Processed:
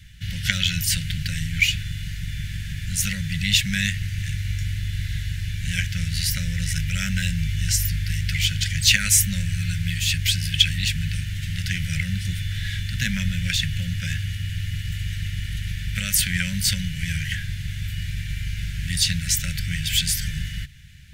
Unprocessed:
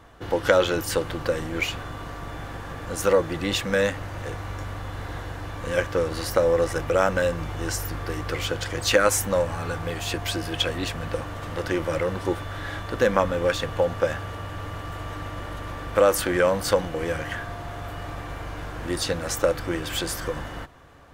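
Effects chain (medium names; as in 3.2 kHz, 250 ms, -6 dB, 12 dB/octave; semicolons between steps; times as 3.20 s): inverse Chebyshev band-stop 300–1200 Hz, stop band 40 dB; trim +8.5 dB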